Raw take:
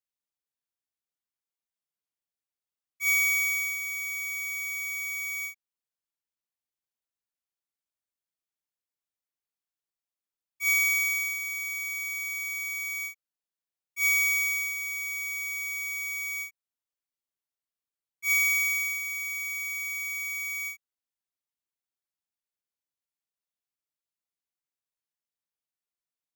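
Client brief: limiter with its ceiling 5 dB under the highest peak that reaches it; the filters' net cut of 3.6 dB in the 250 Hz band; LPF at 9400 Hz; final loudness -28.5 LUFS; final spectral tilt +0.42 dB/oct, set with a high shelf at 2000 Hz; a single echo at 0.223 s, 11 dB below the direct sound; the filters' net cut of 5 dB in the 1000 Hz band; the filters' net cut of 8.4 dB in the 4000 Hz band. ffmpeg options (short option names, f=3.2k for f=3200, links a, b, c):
-af "lowpass=9.4k,equalizer=f=250:t=o:g=-5.5,equalizer=f=1k:t=o:g=-4,highshelf=f=2k:g=-4.5,equalizer=f=4k:t=o:g=-6,alimiter=level_in=5.5dB:limit=-24dB:level=0:latency=1,volume=-5.5dB,aecho=1:1:223:0.282,volume=4dB"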